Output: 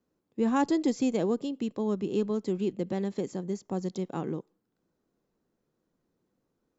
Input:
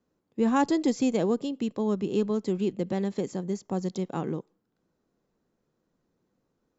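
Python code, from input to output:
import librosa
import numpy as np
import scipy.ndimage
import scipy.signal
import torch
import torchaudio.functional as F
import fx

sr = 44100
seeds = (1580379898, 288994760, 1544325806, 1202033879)

y = fx.peak_eq(x, sr, hz=330.0, db=2.0, octaves=0.77)
y = y * librosa.db_to_amplitude(-3.0)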